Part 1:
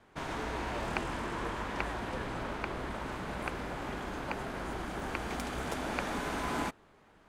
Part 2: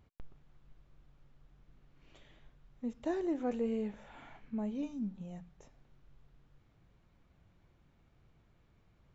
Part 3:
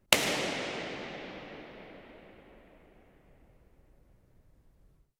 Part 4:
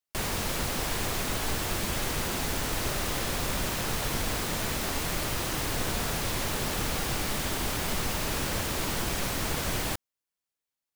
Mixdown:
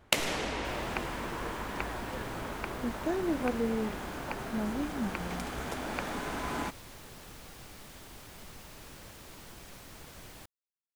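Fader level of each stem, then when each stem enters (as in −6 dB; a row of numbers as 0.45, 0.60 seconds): −1.0, +3.0, −4.0, −19.0 decibels; 0.00, 0.00, 0.00, 0.50 seconds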